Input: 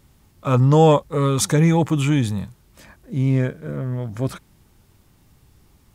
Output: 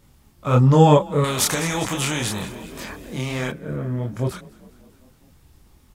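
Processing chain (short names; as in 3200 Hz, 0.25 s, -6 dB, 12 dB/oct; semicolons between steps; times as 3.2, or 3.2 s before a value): chorus voices 4, 1.3 Hz, delay 26 ms, depth 3 ms; frequency-shifting echo 0.202 s, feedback 63%, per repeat +30 Hz, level -22 dB; 1.24–3.52 spectral compressor 2:1; gain +3.5 dB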